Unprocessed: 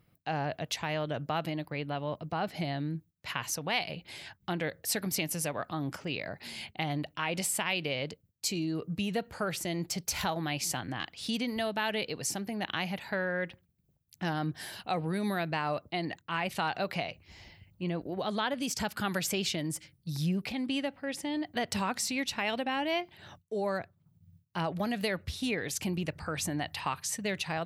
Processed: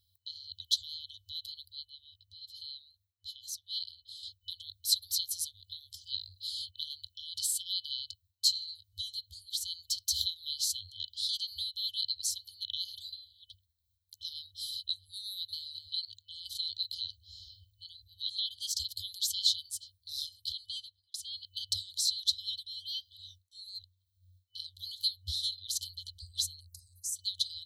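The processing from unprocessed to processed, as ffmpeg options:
ffmpeg -i in.wav -filter_complex "[0:a]asplit=2[link_01][link_02];[link_02]afade=type=in:start_time=15.26:duration=0.01,afade=type=out:start_time=15.7:duration=0.01,aecho=0:1:220|440|660:0.316228|0.0632456|0.0126491[link_03];[link_01][link_03]amix=inputs=2:normalize=0,asplit=3[link_04][link_05][link_06];[link_04]afade=type=out:start_time=26.59:duration=0.02[link_07];[link_05]asuperstop=centerf=2800:order=8:qfactor=0.56,afade=type=in:start_time=26.59:duration=0.02,afade=type=out:start_time=27.15:duration=0.02[link_08];[link_06]afade=type=in:start_time=27.15:duration=0.02[link_09];[link_07][link_08][link_09]amix=inputs=3:normalize=0,asplit=4[link_10][link_11][link_12][link_13];[link_10]atrim=end=1.852[link_14];[link_11]atrim=start=1.848:end=4.232,asetpts=PTS-STARTPTS,volume=-6.5dB[link_15];[link_12]atrim=start=4.228:end=21.14,asetpts=PTS-STARTPTS,afade=type=out:start_time=16.442:duration=0.47[link_16];[link_13]atrim=start=21.14,asetpts=PTS-STARTPTS,afade=type=in:duration=0.004:curve=hsin[link_17];[link_14][link_15]acrossfade=duration=0.004:curve1=hsin:curve2=hsin[link_18];[link_16][link_17]concat=n=2:v=0:a=1[link_19];[link_18][link_19]acrossfade=duration=0.004:curve1=hsin:curve2=hsin,highpass=75,afftfilt=real='re*(1-between(b*sr/4096,100,3000))':imag='im*(1-between(b*sr/4096,100,3000))':win_size=4096:overlap=0.75,equalizer=frequency=4100:width=5.9:gain=14.5" out.wav

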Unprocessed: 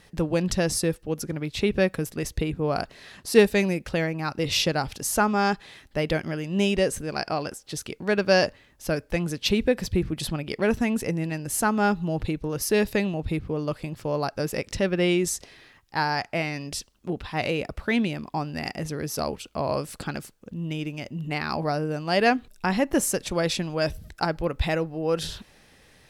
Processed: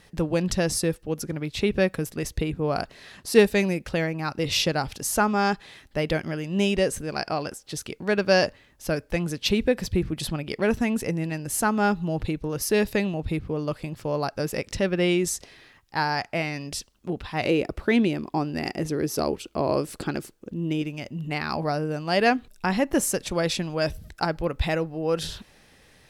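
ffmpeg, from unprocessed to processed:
ffmpeg -i in.wav -filter_complex "[0:a]asettb=1/sr,asplit=3[link_01][link_02][link_03];[link_01]atrim=end=17.454[link_04];[link_02]atrim=start=17.45:end=20.82,asetpts=PTS-STARTPTS,afade=type=in:duration=0.004:curve=qsin,afade=type=out:start_time=3.366:duration=0.004:curve=qsin,equalizer=frequency=350:width_type=o:width=0.77:gain=9.5[link_05];[link_03]atrim=start=20.816[link_06];[link_04][link_05]acrossfade=duration=0.004:curve1=hsin:curve2=qsin[link_07];[link_07][link_06]acrossfade=duration=0.004:curve1=qsin:curve2=hsin" out.wav

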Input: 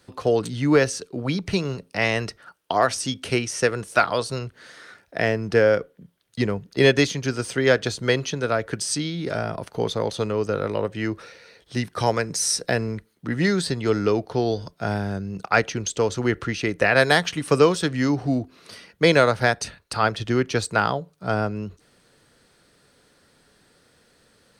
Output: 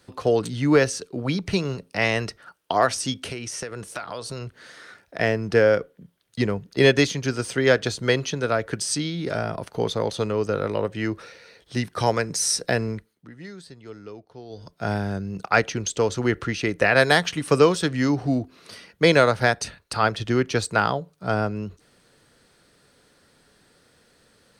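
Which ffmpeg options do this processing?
ffmpeg -i in.wav -filter_complex "[0:a]asettb=1/sr,asplit=3[link_01][link_02][link_03];[link_01]atrim=end=3.284[link_04];[link_02]atrim=start=3.28:end=5.2,asetpts=PTS-STARTPTS,afade=type=in:duration=0.004:curve=qsin,afade=type=out:start_time=1.916:duration=0.004:curve=qsin,acompressor=threshold=-28dB:ratio=10:attack=3.2:release=140:knee=1:detection=peak[link_05];[link_03]atrim=start=5.196[link_06];[link_04][link_05]acrossfade=duration=0.004:curve1=hsin:curve2=qsin[link_07];[link_07][link_06]acrossfade=duration=0.004:curve1=qsin:curve2=hsin,asplit=3[link_08][link_09][link_10];[link_08]atrim=end=13.31,asetpts=PTS-STARTPTS,afade=type=out:start_time=12.91:duration=0.4:silence=0.112202[link_11];[link_09]atrim=start=13.31:end=14.49,asetpts=PTS-STARTPTS,volume=-19dB[link_12];[link_10]atrim=start=14.49,asetpts=PTS-STARTPTS,afade=type=in:duration=0.4:silence=0.112202[link_13];[link_11][link_12][link_13]concat=n=3:v=0:a=1" out.wav

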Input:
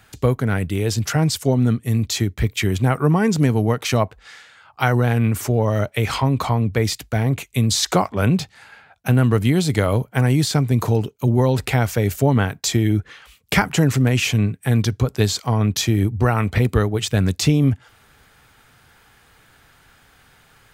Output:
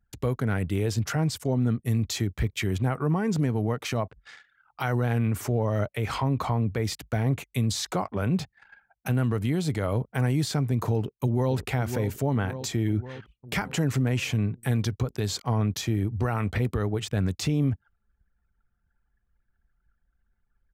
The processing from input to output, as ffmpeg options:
ffmpeg -i in.wav -filter_complex "[0:a]asplit=2[link_01][link_02];[link_02]afade=type=in:start_time=10.95:duration=0.01,afade=type=out:start_time=11.55:duration=0.01,aecho=0:1:550|1100|1650|2200|2750|3300|3850:0.298538|0.179123|0.107474|0.0644843|0.0386906|0.0232143|0.0139286[link_03];[link_01][link_03]amix=inputs=2:normalize=0,anlmdn=0.251,alimiter=limit=-13dB:level=0:latency=1:release=127,adynamicequalizer=threshold=0.00794:dfrequency=2200:dqfactor=0.7:tfrequency=2200:tqfactor=0.7:attack=5:release=100:ratio=0.375:range=3:mode=cutabove:tftype=highshelf,volume=-4dB" out.wav

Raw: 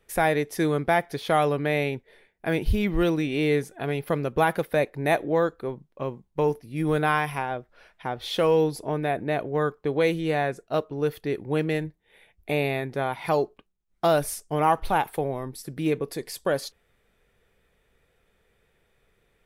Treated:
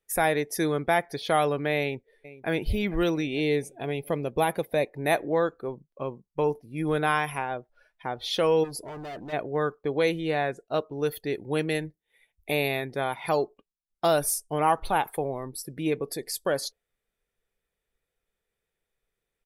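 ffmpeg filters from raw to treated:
ffmpeg -i in.wav -filter_complex "[0:a]asplit=2[link_01][link_02];[link_02]afade=type=in:start_time=1.79:duration=0.01,afade=type=out:start_time=2.5:duration=0.01,aecho=0:1:450|900|1350|1800|2250|2700|3150|3600:0.149624|0.104736|0.0733155|0.0513209|0.0359246|0.0251472|0.0176031|0.0123221[link_03];[link_01][link_03]amix=inputs=2:normalize=0,asettb=1/sr,asplit=3[link_04][link_05][link_06];[link_04]atrim=end=3.304[link_07];[link_05]atrim=start=3.3:end=4.91,asetpts=PTS-STARTPTS,afade=type=in:duration=0.004:curve=qsin,afade=type=out:start_time=1.606:duration=0.004:curve=qsin,equalizer=frequency=1400:width=2.2:gain=-7.5[link_08];[link_06]atrim=start=4.906[link_09];[link_07][link_08]acrossfade=duration=0.004:curve1=hsin:curve2=qsin[link_10];[link_10][link_09]acrossfade=duration=0.004:curve1=qsin:curve2=hsin,asplit=3[link_11][link_12][link_13];[link_11]afade=type=out:start_time=8.63:duration=0.02[link_14];[link_12]volume=34dB,asoftclip=hard,volume=-34dB,afade=type=in:start_time=8.63:duration=0.02,afade=type=out:start_time=9.32:duration=0.02[link_15];[link_13]afade=type=in:start_time=9.32:duration=0.02[link_16];[link_14][link_15][link_16]amix=inputs=3:normalize=0,asettb=1/sr,asplit=3[link_17][link_18][link_19];[link_17]atrim=end=10.954[link_20];[link_18]atrim=start=10.95:end=13.14,asetpts=PTS-STARTPTS,afade=type=in:duration=0.004:curve=qsin,afade=type=out:start_time=2.186:duration=0.004:curve=qsin,highshelf=frequency=3300:gain=5.5[link_21];[link_19]atrim=start=13.136[link_22];[link_20][link_21]acrossfade=duration=0.004:curve1=hsin:curve2=qsin[link_23];[link_23][link_22]acrossfade=duration=0.004:curve1=qsin:curve2=hsin,afftdn=noise_reduction=16:noise_floor=-46,bass=frequency=250:gain=-3,treble=frequency=4000:gain=8,volume=-1.5dB" out.wav

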